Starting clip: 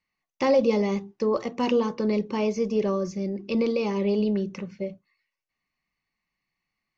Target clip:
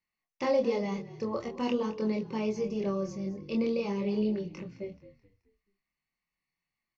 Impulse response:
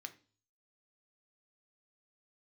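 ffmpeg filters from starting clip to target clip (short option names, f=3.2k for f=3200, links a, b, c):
-filter_complex "[0:a]asplit=5[a][b][c][d][e];[b]adelay=215,afreqshift=-46,volume=-17dB[f];[c]adelay=430,afreqshift=-92,volume=-24.1dB[g];[d]adelay=645,afreqshift=-138,volume=-31.3dB[h];[e]adelay=860,afreqshift=-184,volume=-38.4dB[i];[a][f][g][h][i]amix=inputs=5:normalize=0,flanger=delay=22.5:depth=4.3:speed=0.44,volume=-3.5dB"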